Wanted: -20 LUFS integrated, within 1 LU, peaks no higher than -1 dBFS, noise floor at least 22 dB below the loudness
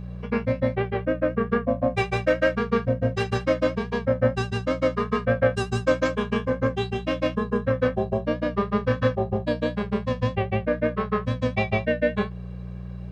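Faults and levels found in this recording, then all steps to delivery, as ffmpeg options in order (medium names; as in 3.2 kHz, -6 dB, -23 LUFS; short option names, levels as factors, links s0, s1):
hum 60 Hz; highest harmonic 180 Hz; hum level -32 dBFS; loudness -25.0 LUFS; peak level -8.0 dBFS; loudness target -20.0 LUFS
-> -af "bandreject=f=60:t=h:w=4,bandreject=f=120:t=h:w=4,bandreject=f=180:t=h:w=4"
-af "volume=1.78"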